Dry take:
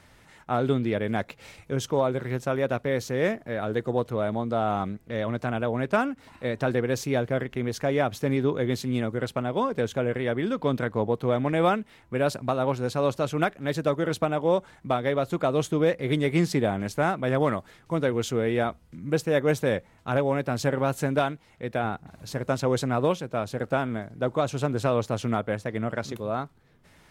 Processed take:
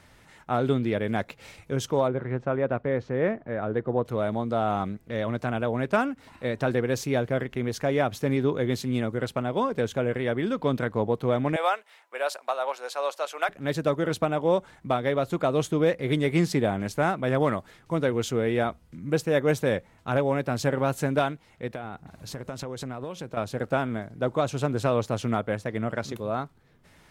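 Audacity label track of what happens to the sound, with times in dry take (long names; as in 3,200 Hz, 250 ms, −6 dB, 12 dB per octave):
2.080000	4.050000	low-pass filter 1,800 Hz
11.560000	13.490000	high-pass filter 580 Hz 24 dB per octave
21.670000	23.370000	downward compressor 12 to 1, threshold −30 dBFS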